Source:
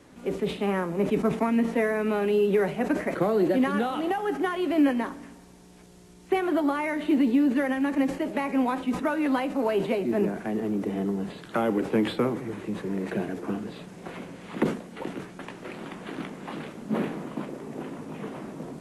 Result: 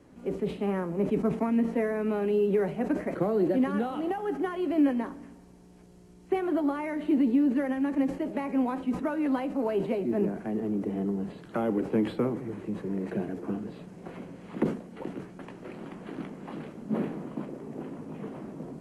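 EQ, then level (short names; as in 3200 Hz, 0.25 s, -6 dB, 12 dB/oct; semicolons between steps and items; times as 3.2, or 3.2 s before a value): tilt shelf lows +4.5 dB, about 900 Hz; notch 3600 Hz, Q 15; -5.5 dB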